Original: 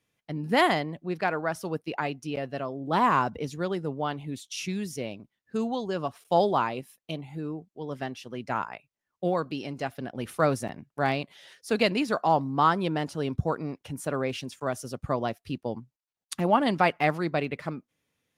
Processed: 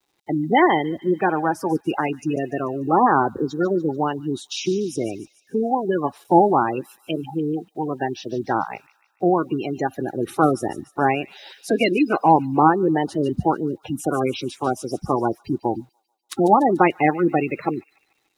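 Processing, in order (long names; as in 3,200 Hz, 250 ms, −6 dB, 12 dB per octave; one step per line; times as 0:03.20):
spectral magnitudes quantised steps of 30 dB
de-essing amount 60%
gate on every frequency bin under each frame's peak −25 dB strong
parametric band 61 Hz −15 dB 0.26 octaves
in parallel at +0.5 dB: downward compressor 10 to 1, threshold −36 dBFS, peak gain reduction 19.5 dB
on the sum: bit reduction 11 bits
hollow resonant body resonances 340/800/3,800 Hz, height 11 dB, ringing for 25 ms
on a send: delay with a high-pass on its return 146 ms, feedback 52%, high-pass 3,900 Hz, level −9.5 dB
on the sum: level +1 dB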